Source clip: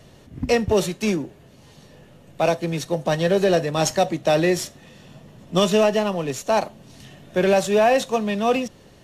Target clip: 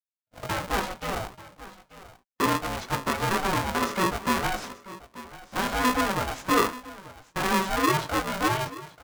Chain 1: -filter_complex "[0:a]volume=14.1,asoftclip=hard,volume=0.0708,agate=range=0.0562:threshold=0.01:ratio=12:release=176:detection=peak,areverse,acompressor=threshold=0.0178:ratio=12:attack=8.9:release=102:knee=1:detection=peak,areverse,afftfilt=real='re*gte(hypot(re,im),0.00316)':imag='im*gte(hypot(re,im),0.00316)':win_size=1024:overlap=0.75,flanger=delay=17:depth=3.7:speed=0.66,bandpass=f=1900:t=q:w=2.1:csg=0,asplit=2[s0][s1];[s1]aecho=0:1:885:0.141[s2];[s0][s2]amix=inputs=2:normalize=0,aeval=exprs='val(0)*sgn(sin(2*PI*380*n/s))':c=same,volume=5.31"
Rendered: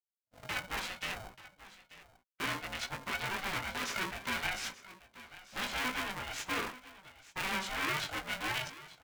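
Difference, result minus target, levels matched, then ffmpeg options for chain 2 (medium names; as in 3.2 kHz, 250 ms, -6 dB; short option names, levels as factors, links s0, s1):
compression: peak gain reduction +7 dB; 2 kHz band +4.0 dB
-filter_complex "[0:a]volume=14.1,asoftclip=hard,volume=0.0708,agate=range=0.0562:threshold=0.01:ratio=12:release=176:detection=peak,areverse,acompressor=threshold=0.0422:ratio=12:attack=8.9:release=102:knee=1:detection=peak,areverse,afftfilt=real='re*gte(hypot(re,im),0.00316)':imag='im*gte(hypot(re,im),0.00316)':win_size=1024:overlap=0.75,flanger=delay=17:depth=3.7:speed=0.66,bandpass=f=920:t=q:w=2.1:csg=0,asplit=2[s0][s1];[s1]aecho=0:1:885:0.141[s2];[s0][s2]amix=inputs=2:normalize=0,aeval=exprs='val(0)*sgn(sin(2*PI*380*n/s))':c=same,volume=5.31"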